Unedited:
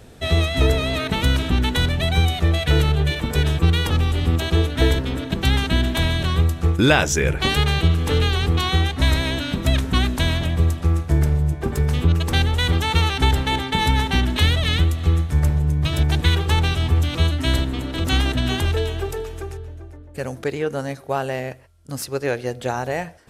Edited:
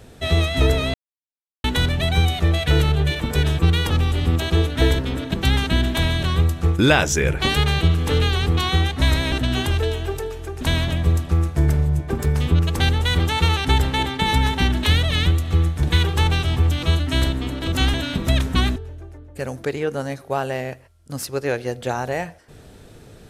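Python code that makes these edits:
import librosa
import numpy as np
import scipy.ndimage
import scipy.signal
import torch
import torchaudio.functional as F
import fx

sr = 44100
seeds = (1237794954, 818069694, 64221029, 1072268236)

y = fx.edit(x, sr, fx.silence(start_s=0.94, length_s=0.7),
    fx.swap(start_s=9.32, length_s=0.82, other_s=18.26, other_length_s=1.29),
    fx.cut(start_s=15.36, length_s=0.79), tone=tone)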